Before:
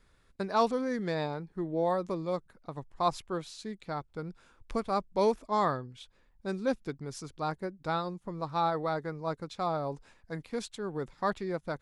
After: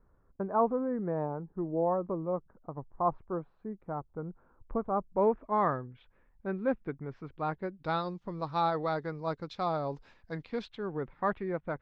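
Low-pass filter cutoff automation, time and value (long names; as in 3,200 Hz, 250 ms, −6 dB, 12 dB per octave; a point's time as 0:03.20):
low-pass filter 24 dB per octave
0:04.93 1,200 Hz
0:05.63 2,200 Hz
0:07.20 2,200 Hz
0:08.03 5,100 Hz
0:10.34 5,100 Hz
0:11.03 2,500 Hz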